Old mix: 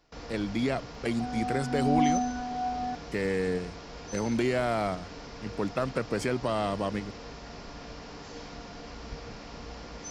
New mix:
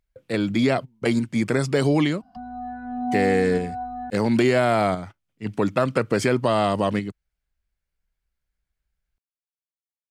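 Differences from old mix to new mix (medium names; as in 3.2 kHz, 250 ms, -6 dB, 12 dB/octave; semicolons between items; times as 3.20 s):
speech +8.5 dB; first sound: muted; second sound: entry +1.15 s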